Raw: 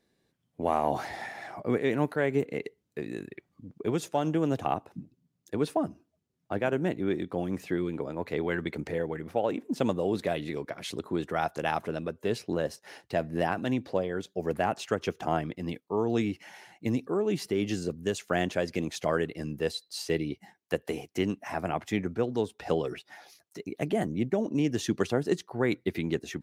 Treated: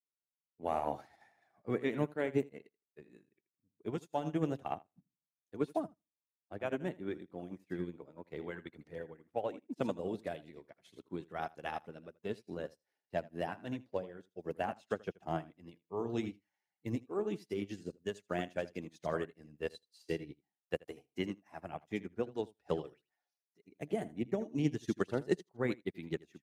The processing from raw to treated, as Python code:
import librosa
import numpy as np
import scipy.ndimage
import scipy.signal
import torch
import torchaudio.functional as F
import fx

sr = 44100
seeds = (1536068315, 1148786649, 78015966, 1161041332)

y = fx.spec_quant(x, sr, step_db=15)
y = fx.echo_feedback(y, sr, ms=80, feedback_pct=21, wet_db=-9.5)
y = fx.upward_expand(y, sr, threshold_db=-47.0, expansion=2.5)
y = y * librosa.db_to_amplitude(-2.5)